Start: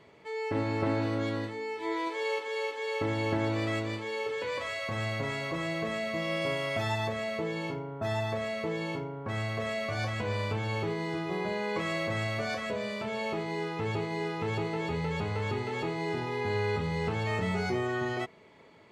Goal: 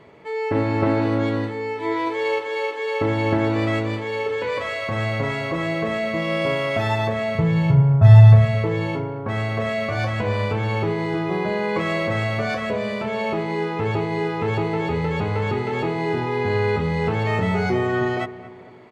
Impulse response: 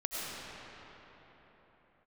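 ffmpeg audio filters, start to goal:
-filter_complex "[0:a]asettb=1/sr,asplit=3[s0][s1][s2];[s0]atrim=end=7.354[s3];[s1]atrim=start=7.35:end=8.55,asetpts=PTS-STARTPTS,afade=t=in:d=0.004:c=qsin,afade=t=out:st=1.196:d=0.004:c=qsin,lowshelf=f=190:t=q:w=3:g=13[s4];[s2]atrim=start=8.546[s5];[s3][s4]acrossfade=d=0.004:c1=hsin:c2=qsin[s6];[s6][s5]acrossfade=d=0.004:c1=qsin:c2=hsin,asplit=2[s7][s8];[s8]adynamicsmooth=sensitivity=3:basefreq=3300,volume=1.19[s9];[s7][s9]amix=inputs=2:normalize=0,asplit=2[s10][s11];[s11]adelay=227,lowpass=f=1800:p=1,volume=0.178,asplit=2[s12][s13];[s13]adelay=227,lowpass=f=1800:p=1,volume=0.49,asplit=2[s14][s15];[s15]adelay=227,lowpass=f=1800:p=1,volume=0.49,asplit=2[s16][s17];[s17]adelay=227,lowpass=f=1800:p=1,volume=0.49,asplit=2[s18][s19];[s19]adelay=227,lowpass=f=1800:p=1,volume=0.49[s20];[s10][s12][s14][s16][s18][s20]amix=inputs=6:normalize=0,volume=1.33"

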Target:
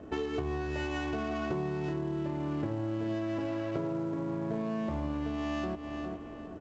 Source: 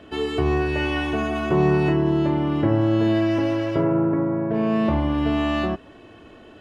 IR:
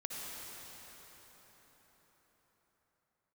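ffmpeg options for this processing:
-filter_complex "[0:a]adynamicsmooth=sensitivity=3.5:basefreq=870,asplit=2[s0][s1];[s1]adelay=408,lowpass=f=3900:p=1,volume=0.178,asplit=2[s2][s3];[s3]adelay=408,lowpass=f=3900:p=1,volume=0.37,asplit=2[s4][s5];[s5]adelay=408,lowpass=f=3900:p=1,volume=0.37[s6];[s2][s4][s6]amix=inputs=3:normalize=0[s7];[s0][s7]amix=inputs=2:normalize=0,acompressor=threshold=0.0316:ratio=16" -ar 16000 -c:a pcm_mulaw

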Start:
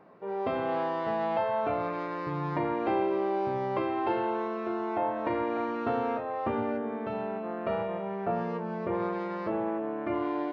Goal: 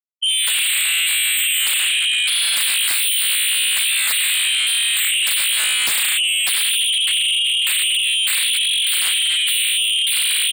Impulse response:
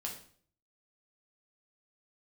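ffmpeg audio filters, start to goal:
-filter_complex "[0:a]acrossover=split=140|2200[s0][s1][s2];[s0]acrusher=bits=7:mix=0:aa=0.000001[s3];[s3][s1][s2]amix=inputs=3:normalize=0,asplit=2[s4][s5];[s5]adelay=90,highpass=300,lowpass=3400,asoftclip=type=hard:threshold=0.0473,volume=0.126[s6];[s4][s6]amix=inputs=2:normalize=0,lowpass=f=3000:t=q:w=0.5098,lowpass=f=3000:t=q:w=0.6013,lowpass=f=3000:t=q:w=0.9,lowpass=f=3000:t=q:w=2.563,afreqshift=-3500,tiltshelf=f=1100:g=-6.5,afftfilt=real='re*gte(hypot(re,im),0.0794)':imag='im*gte(hypot(re,im),0.0794)':win_size=1024:overlap=0.75,equalizer=f=2600:t=o:w=0.6:g=-3,aeval=exprs='0.211*sin(PI/2*7.94*val(0)/0.211)':c=same,volume=0.841"

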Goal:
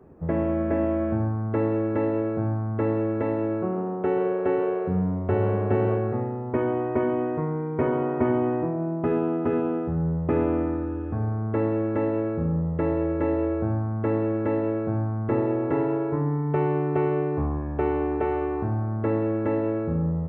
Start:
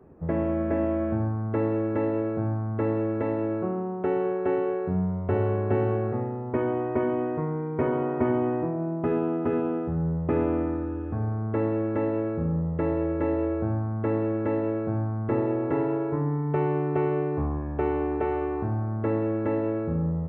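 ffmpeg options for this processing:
-filter_complex "[0:a]asettb=1/sr,asplit=3[s0][s1][s2];[s0]atrim=end=3.594[s3];[s1]atrim=start=3.59:end=5.98,asetpts=PTS-STARTPTS,afade=t=in:d=0.004:c=qsin,afade=t=out:st=2.386:d=0.004:c=qsin,asplit=4[s4][s5][s6][s7];[s5]adelay=136,afreqshift=93,volume=0.224[s8];[s6]adelay=272,afreqshift=186,volume=0.0741[s9];[s7]adelay=408,afreqshift=279,volume=0.0243[s10];[s4][s8][s9][s10]amix=inputs=4:normalize=0,atrim=end_sample=105399[s11];[s2]atrim=start=5.976[s12];[s3][s11]acrossfade=d=0.004:c1=hsin:c2=qsin[s13];[s13][s12]acrossfade=d=0.004:c1=qsin:c2=hsin,volume=1.19"

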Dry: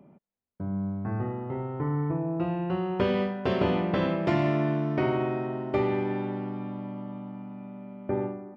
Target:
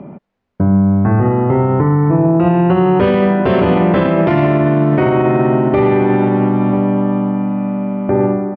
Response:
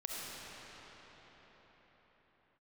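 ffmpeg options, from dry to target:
-filter_complex "[0:a]lowpass=2500,asplit=2[s0][s1];[s1]acompressor=threshold=0.02:ratio=6,volume=0.841[s2];[s0][s2]amix=inputs=2:normalize=0,asplit=2[s3][s4];[s4]adelay=991.3,volume=0.158,highshelf=f=4000:g=-22.3[s5];[s3][s5]amix=inputs=2:normalize=0,alimiter=level_in=10.6:limit=0.891:release=50:level=0:latency=1,volume=0.668"

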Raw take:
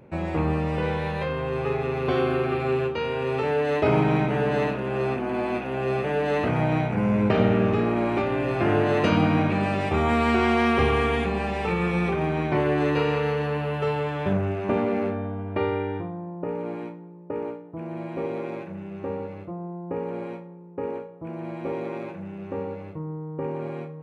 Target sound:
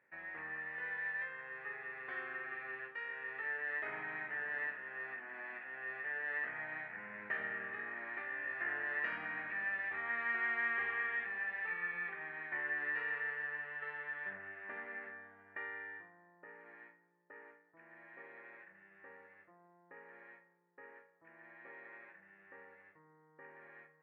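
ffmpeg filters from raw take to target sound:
-af "bandpass=f=1800:t=q:w=18:csg=0,aemphasis=mode=reproduction:type=75kf,volume=2.24"

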